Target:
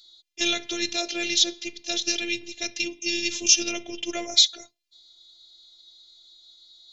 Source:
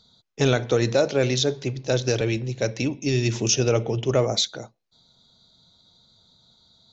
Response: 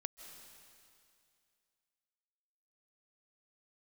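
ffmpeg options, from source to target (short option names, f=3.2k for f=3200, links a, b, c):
-af "afftfilt=real='hypot(re,im)*cos(PI*b)':imag='0':win_size=512:overlap=0.75,highshelf=f=1.8k:t=q:w=1.5:g=13.5,volume=-6dB"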